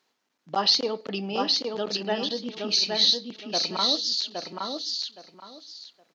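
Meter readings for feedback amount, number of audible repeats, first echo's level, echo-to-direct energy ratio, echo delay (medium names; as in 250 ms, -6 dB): 22%, 3, -3.5 dB, -3.5 dB, 817 ms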